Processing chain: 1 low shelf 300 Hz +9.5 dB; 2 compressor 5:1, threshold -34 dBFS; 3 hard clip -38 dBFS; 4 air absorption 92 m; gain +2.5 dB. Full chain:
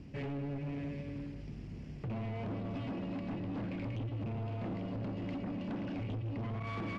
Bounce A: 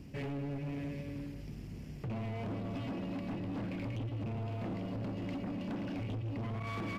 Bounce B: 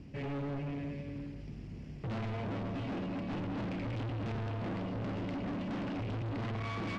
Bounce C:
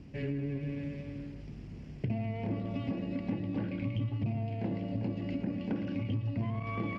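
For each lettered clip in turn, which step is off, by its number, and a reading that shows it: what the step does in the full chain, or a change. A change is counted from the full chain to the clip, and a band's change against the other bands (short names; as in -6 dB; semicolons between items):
4, 4 kHz band +2.0 dB; 2, mean gain reduction 6.5 dB; 3, distortion -8 dB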